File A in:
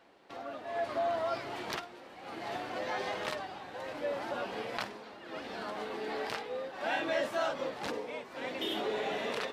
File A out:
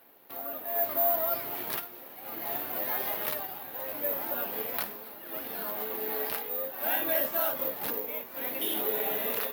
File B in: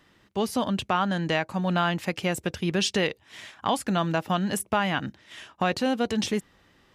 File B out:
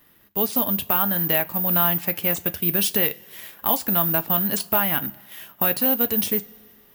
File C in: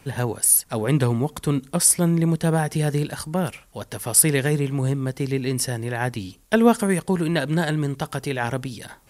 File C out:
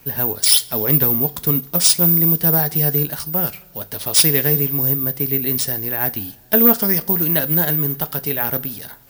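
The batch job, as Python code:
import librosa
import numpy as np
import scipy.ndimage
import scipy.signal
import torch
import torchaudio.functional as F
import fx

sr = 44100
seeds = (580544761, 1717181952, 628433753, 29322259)

y = (np.kron(x[::3], np.eye(3)[0]) * 3)[:len(x)]
y = fx.rev_double_slope(y, sr, seeds[0], early_s=0.22, late_s=2.3, knee_db=-22, drr_db=10.0)
y = fx.quant_float(y, sr, bits=4)
y = F.gain(torch.from_numpy(y), -1.0).numpy()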